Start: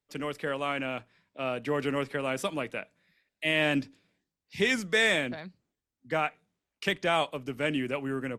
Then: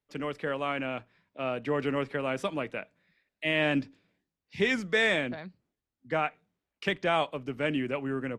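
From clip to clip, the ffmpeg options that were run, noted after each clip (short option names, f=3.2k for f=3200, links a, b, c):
-af "aemphasis=mode=reproduction:type=50fm"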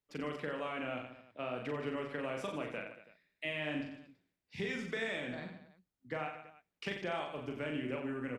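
-filter_complex "[0:a]acompressor=threshold=-32dB:ratio=6,asplit=2[a][b];[b]aecho=0:1:40|90|152.5|230.6|328.3:0.631|0.398|0.251|0.158|0.1[c];[a][c]amix=inputs=2:normalize=0,volume=-4.5dB"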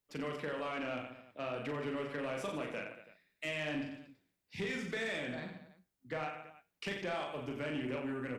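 -af "flanger=delay=8:depth=6.6:regen=-75:speed=0.26:shape=sinusoidal,asoftclip=type=tanh:threshold=-36dB,crystalizer=i=0.5:c=0,volume=6dB"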